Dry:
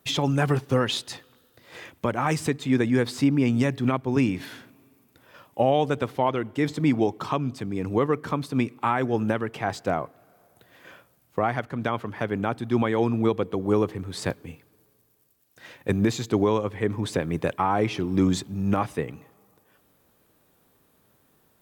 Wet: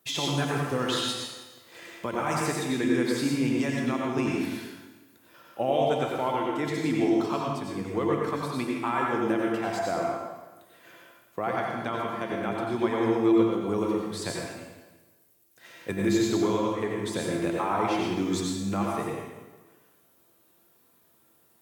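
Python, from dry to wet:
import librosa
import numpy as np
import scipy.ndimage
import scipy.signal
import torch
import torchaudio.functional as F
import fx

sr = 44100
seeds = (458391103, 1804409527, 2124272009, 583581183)

y = fx.highpass(x, sr, hz=170.0, slope=6)
y = fx.high_shelf(y, sr, hz=4800.0, db=5.5)
y = fx.comb_fb(y, sr, f0_hz=340.0, decay_s=0.63, harmonics='all', damping=0.0, mix_pct=80)
y = fx.echo_feedback(y, sr, ms=167, feedback_pct=44, wet_db=-17.0)
y = fx.rev_plate(y, sr, seeds[0], rt60_s=1.1, hf_ratio=0.8, predelay_ms=75, drr_db=-2.0)
y = y * librosa.db_to_amplitude(6.5)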